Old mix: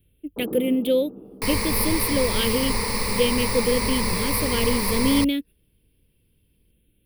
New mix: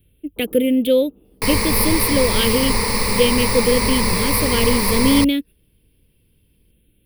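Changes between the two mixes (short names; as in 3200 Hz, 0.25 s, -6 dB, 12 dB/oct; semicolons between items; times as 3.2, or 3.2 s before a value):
speech +5.0 dB; first sound -11.5 dB; second sound +5.5 dB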